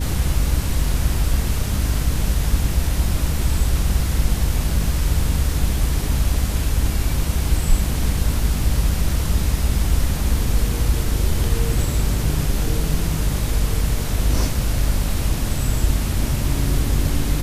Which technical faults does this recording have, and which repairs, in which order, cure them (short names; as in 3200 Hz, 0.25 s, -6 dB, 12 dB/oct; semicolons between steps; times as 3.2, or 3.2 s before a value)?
hum 50 Hz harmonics 6 -24 dBFS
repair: de-hum 50 Hz, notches 6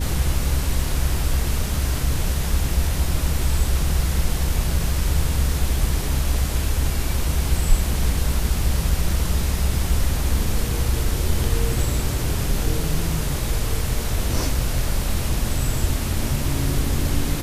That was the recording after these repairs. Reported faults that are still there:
none